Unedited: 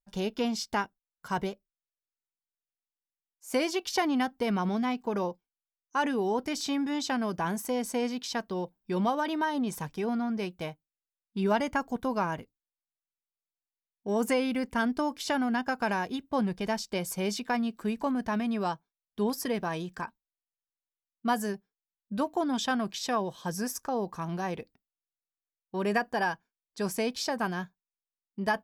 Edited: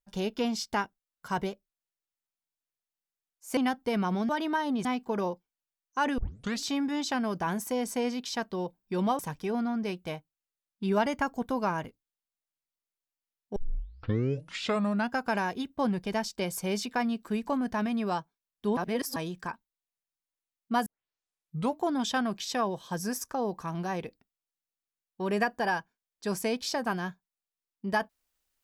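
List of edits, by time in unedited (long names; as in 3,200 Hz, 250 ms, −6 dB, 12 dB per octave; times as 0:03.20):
0:03.57–0:04.11: remove
0:06.16: tape start 0.45 s
0:09.17–0:09.73: move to 0:04.83
0:14.10: tape start 1.60 s
0:19.31–0:19.70: reverse
0:21.40: tape start 0.92 s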